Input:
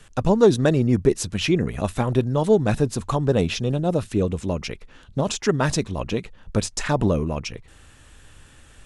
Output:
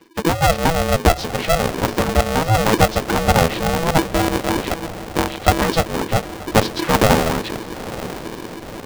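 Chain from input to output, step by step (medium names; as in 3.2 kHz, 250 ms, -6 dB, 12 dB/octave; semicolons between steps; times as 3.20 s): knee-point frequency compression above 1.7 kHz 1.5:1; level rider gain up to 11.5 dB; bass shelf 260 Hz +11 dB; de-hum 99.75 Hz, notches 4; 3.98–5.62 s: monotone LPC vocoder at 8 kHz 140 Hz; dynamic bell 380 Hz, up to +5 dB, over -22 dBFS, Q 1.3; on a send: echo that smears into a reverb 911 ms, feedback 58%, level -14 dB; on the sum: harmonic-percussive split percussive +9 dB; polarity switched at an audio rate 330 Hz; trim -14 dB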